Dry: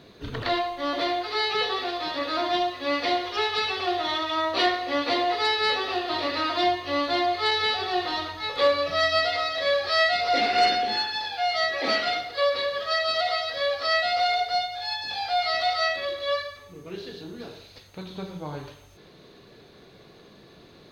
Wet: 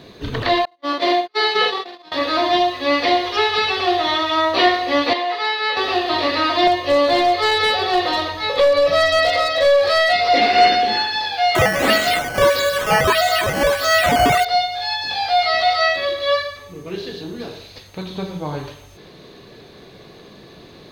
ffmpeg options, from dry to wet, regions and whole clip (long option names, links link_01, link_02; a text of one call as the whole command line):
ffmpeg -i in.wav -filter_complex "[0:a]asettb=1/sr,asplit=3[link_01][link_02][link_03];[link_01]atrim=end=0.654[link_04];[link_02]atrim=start=0.65:end=2.12,asetpts=PTS-STARTPTS,afade=type=in:duration=0.004:curve=qsin,afade=type=out:start_time=1.466:duration=0.004:curve=qsin,agate=range=-44dB:threshold=-27dB:ratio=16:release=100:detection=peak,highpass=frequency=130:width=0.5412,highpass=frequency=130:width=1.3066,asplit=2[link_05][link_06];[link_06]adelay=48,volume=-2dB[link_07];[link_05][link_07]amix=inputs=2:normalize=0,atrim=end_sample=64827[link_08];[link_03]atrim=start=2.116[link_09];[link_04][link_08]acrossfade=duration=0.004:curve1=hsin:curve2=qsin[link_10];[link_10][link_09]acrossfade=duration=0.004:curve1=qsin:curve2=hsin,asettb=1/sr,asplit=3[link_11][link_12][link_13];[link_11]atrim=end=5.134[link_14];[link_12]atrim=start=5.13:end=5.77,asetpts=PTS-STARTPTS,afade=type=in:duration=0.004:curve=qsin,afade=type=out:start_time=0.636:duration=0.004:curve=qsin,acrossover=split=6000[link_15][link_16];[link_16]acompressor=threshold=-48dB:ratio=4:attack=1:release=60[link_17];[link_15][link_17]amix=inputs=2:normalize=0,highpass=frequency=1100:poles=1,highshelf=frequency=3800:gain=-11.5[link_18];[link_13]atrim=start=5.766[link_19];[link_14][link_18]acrossfade=duration=0.004:curve1=hsin:curve2=qsin[link_20];[link_20][link_19]acrossfade=duration=0.004:curve1=qsin:curve2=hsin,asettb=1/sr,asplit=3[link_21][link_22][link_23];[link_21]atrim=end=6.674[link_24];[link_22]atrim=start=6.67:end=10.13,asetpts=PTS-STARTPTS,afade=type=in:duration=0.004:curve=qsin,afade=type=out:start_time=3.456:duration=0.004:curve=qsin,equalizer=frequency=540:width=6.1:gain=12.5,acompressor=threshold=-18dB:ratio=6:attack=3.2:release=140:knee=1:detection=peak,aeval=exprs='clip(val(0),-1,0.0944)':channel_layout=same[link_25];[link_23]atrim=start=10.126[link_26];[link_24][link_25]acrossfade=duration=0.004:curve1=hsin:curve2=qsin[link_27];[link_27][link_26]acrossfade=duration=0.004:curve1=qsin:curve2=hsin,asettb=1/sr,asplit=3[link_28][link_29][link_30];[link_28]atrim=end=11.554[link_31];[link_29]atrim=start=11.55:end=14.45,asetpts=PTS-STARTPTS,afade=type=in:duration=0.004:curve=qsin,afade=type=out:start_time=2.896:duration=0.004:curve=qsin,bass=frequency=250:gain=7,treble=frequency=4000:gain=8,acrusher=samples=8:mix=1:aa=0.000001:lfo=1:lforange=8:lforate=1.6,aeval=exprs='val(0)+0.0141*sin(2*PI*1500*n/s)':channel_layout=same[link_32];[link_30]atrim=start=14.446[link_33];[link_31][link_32]acrossfade=duration=0.004:curve1=hsin:curve2=qsin[link_34];[link_34][link_33]acrossfade=duration=0.004:curve1=qsin:curve2=hsin,acrossover=split=3500[link_35][link_36];[link_36]acompressor=threshold=-34dB:ratio=4:attack=1:release=60[link_37];[link_35][link_37]amix=inputs=2:normalize=0,bandreject=frequency=1400:width=15,volume=8.5dB" out.wav